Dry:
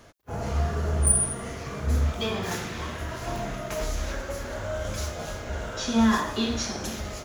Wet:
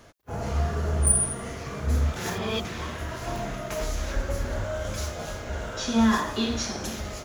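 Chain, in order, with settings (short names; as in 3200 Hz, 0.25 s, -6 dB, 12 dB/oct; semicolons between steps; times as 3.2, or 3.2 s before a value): 2.16–2.65 reverse; 4.15–4.64 low shelf 200 Hz +9 dB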